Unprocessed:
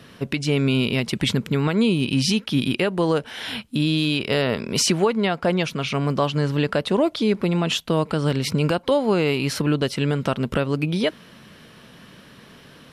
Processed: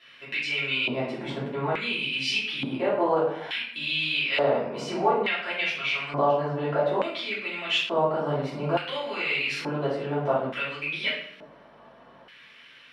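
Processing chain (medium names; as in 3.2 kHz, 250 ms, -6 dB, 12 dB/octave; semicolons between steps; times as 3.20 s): hum 50 Hz, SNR 34 dB; simulated room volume 130 m³, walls mixed, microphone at 3 m; LFO band-pass square 0.57 Hz 780–2400 Hz; trim -5 dB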